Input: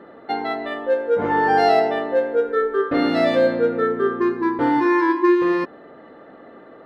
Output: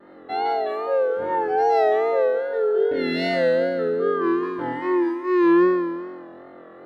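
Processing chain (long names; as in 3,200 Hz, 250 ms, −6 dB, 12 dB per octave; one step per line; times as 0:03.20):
healed spectral selection 0:02.41–0:03.28, 650–1,600 Hz before
downward compressor, threshold −21 dBFS, peak gain reduction 9.5 dB
on a send: flutter between parallel walls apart 3.9 metres, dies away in 1.4 s
on the sum: pitch vibrato 2.5 Hz 66 cents
level −8 dB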